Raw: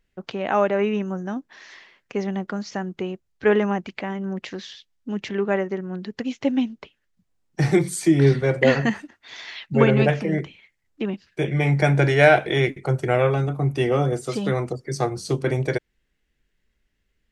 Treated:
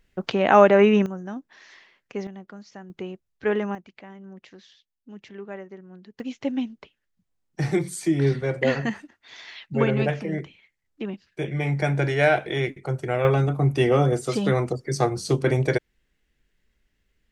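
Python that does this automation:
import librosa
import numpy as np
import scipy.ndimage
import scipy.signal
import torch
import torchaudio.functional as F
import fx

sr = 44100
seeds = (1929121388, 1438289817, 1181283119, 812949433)

y = fx.gain(x, sr, db=fx.steps((0.0, 6.0), (1.06, -5.0), (2.27, -13.5), (2.9, -5.5), (3.75, -14.5), (6.2, -5.0), (13.25, 1.5)))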